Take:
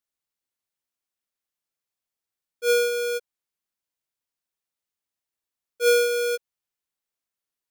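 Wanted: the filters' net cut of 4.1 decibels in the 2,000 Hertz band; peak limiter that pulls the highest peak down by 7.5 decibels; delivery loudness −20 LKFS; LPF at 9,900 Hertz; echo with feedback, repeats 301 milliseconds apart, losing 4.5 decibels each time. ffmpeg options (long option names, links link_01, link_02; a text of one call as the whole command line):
ffmpeg -i in.wav -af "lowpass=9900,equalizer=frequency=2000:width_type=o:gain=-7,alimiter=limit=-22.5dB:level=0:latency=1,aecho=1:1:301|602|903|1204|1505|1806|2107|2408|2709:0.596|0.357|0.214|0.129|0.0772|0.0463|0.0278|0.0167|0.01,volume=10dB" out.wav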